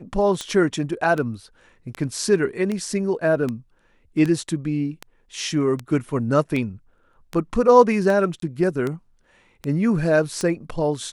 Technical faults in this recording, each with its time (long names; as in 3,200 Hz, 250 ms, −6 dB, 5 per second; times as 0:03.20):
scratch tick 78 rpm −14 dBFS
0:08.40–0:08.42: drop-out 23 ms